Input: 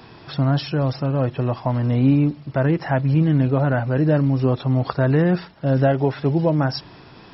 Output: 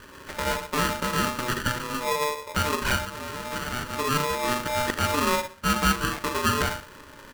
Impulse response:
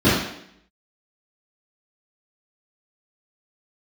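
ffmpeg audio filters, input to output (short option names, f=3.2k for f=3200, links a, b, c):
-filter_complex "[0:a]asettb=1/sr,asplit=3[a][b][c];[a]atrim=end=5.374[d];[b]atrim=start=5.37:end=6.18,asetpts=PTS-STARTPTS,afade=t=in:d=0.004:c=qsin,afade=t=out:st=0.806:d=0.004:c=qsin,lowshelf=f=370:g=-10[e];[c]atrim=start=6.176[f];[d][e]acrossfade=d=0.004:c1=hsin:c2=qsin[g];[g][f]acrossfade=d=0.004:c1=qsin:c2=hsin,acompressor=threshold=-19dB:ratio=3,alimiter=limit=-15dB:level=0:latency=1:release=342,asettb=1/sr,asplit=3[h][i][j];[h]atrim=end=2.964[k];[i]atrim=start=2.96:end=3.98,asetpts=PTS-STARTPTS,afade=t=in:d=0.004:c=qsin,afade=t=out:st=1.016:d=0.004:c=qsin,asoftclip=type=hard:threshold=-30dB[l];[j]atrim=start=3.976[m];[k][l]acrossfade=d=0.004:c1=hsin:c2=qsin[n];[n][m]acrossfade=d=0.004:c1=qsin:c2=hsin,highpass=250,equalizer=f=260:t=q:w=4:g=-10,equalizer=f=370:t=q:w=4:g=-5,equalizer=f=540:t=q:w=4:g=5,equalizer=f=770:t=q:w=4:g=6,equalizer=f=1.1k:t=q:w=4:g=10,equalizer=f=1.8k:t=q:w=4:g=6,lowpass=f=2k:w=0.5412,lowpass=f=2k:w=1.3066,aecho=1:1:40|76:0.282|0.211,asplit=2[o][p];[1:a]atrim=start_sample=2205,afade=t=out:st=0.25:d=0.01,atrim=end_sample=11466[q];[p][q]afir=irnorm=-1:irlink=0,volume=-30.5dB[r];[o][r]amix=inputs=2:normalize=0,adynamicsmooth=sensitivity=1.5:basefreq=570,aeval=exprs='val(0)*sgn(sin(2*PI*740*n/s))':c=same"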